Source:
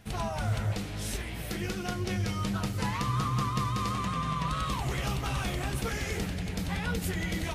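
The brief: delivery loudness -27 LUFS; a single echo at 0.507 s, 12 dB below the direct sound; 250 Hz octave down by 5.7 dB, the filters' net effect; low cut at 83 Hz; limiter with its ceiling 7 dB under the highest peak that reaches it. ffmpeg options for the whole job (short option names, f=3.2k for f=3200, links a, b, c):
-af "highpass=83,equalizer=f=250:t=o:g=-9,alimiter=level_in=2.5dB:limit=-24dB:level=0:latency=1,volume=-2.5dB,aecho=1:1:507:0.251,volume=8.5dB"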